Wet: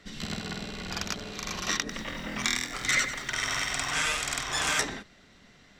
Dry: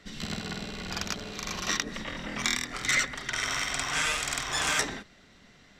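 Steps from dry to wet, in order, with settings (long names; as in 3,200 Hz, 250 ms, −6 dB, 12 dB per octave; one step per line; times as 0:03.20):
0:01.79–0:03.93: feedback echo at a low word length 96 ms, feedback 55%, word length 8 bits, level −11.5 dB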